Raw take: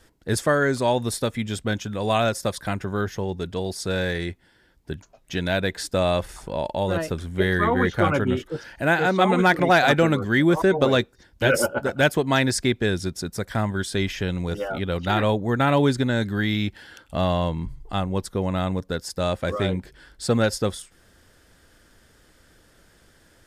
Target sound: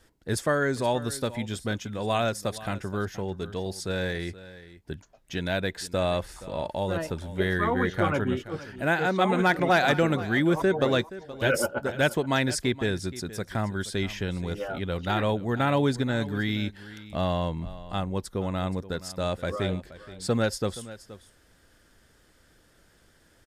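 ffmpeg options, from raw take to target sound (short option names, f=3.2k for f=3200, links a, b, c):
-af "aecho=1:1:474:0.15,volume=-4.5dB"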